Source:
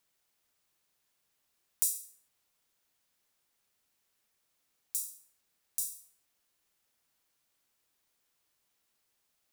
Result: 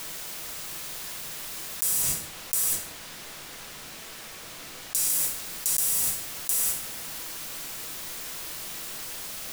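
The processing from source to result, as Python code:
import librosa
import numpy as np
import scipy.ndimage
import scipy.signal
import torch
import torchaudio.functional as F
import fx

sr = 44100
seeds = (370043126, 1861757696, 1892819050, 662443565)

y = fx.high_shelf(x, sr, hz=7100.0, db=-10.0, at=(2.02, 5.1))
y = y + 10.0 ** (-13.0 / 20.0) * np.pad(y, (int(710 * sr / 1000.0), 0))[:len(y)]
y = fx.mod_noise(y, sr, seeds[0], snr_db=12)
y = fx.peak_eq(y, sr, hz=880.0, db=-2.5, octaves=0.24)
y = fx.room_shoebox(y, sr, seeds[1], volume_m3=230.0, walls='furnished', distance_m=0.64)
y = fx.env_flatten(y, sr, amount_pct=100)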